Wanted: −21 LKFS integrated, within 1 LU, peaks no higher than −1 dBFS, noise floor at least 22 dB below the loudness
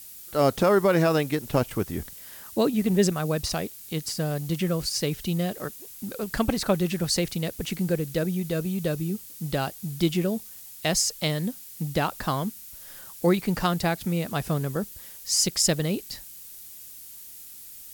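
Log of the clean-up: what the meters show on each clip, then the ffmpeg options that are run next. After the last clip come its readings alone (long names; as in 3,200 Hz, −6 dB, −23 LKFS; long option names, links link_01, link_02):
background noise floor −44 dBFS; target noise floor −49 dBFS; integrated loudness −26.5 LKFS; sample peak −9.0 dBFS; target loudness −21.0 LKFS
→ -af "afftdn=noise_reduction=6:noise_floor=-44"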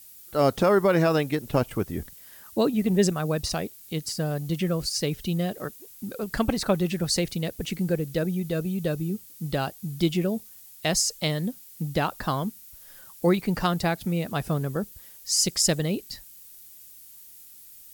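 background noise floor −48 dBFS; target noise floor −49 dBFS
→ -af "afftdn=noise_reduction=6:noise_floor=-48"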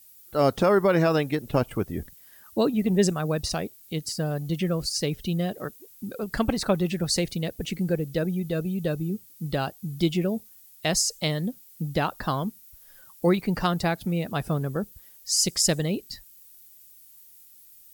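background noise floor −52 dBFS; integrated loudness −26.5 LKFS; sample peak −9.0 dBFS; target loudness −21.0 LKFS
→ -af "volume=5.5dB"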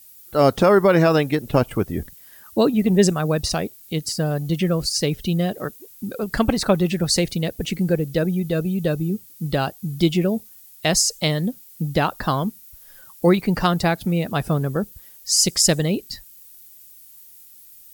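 integrated loudness −21.0 LKFS; sample peak −3.5 dBFS; background noise floor −47 dBFS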